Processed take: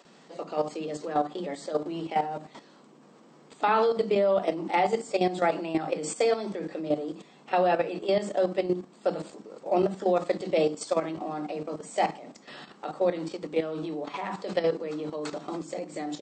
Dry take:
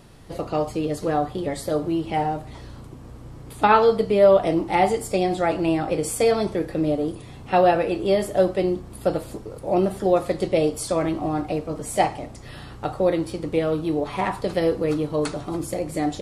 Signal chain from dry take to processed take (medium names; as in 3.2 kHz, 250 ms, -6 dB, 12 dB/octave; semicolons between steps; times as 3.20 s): brick-wall FIR band-pass 160–8400 Hz; bands offset in time highs, lows 50 ms, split 290 Hz; level held to a coarse grid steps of 11 dB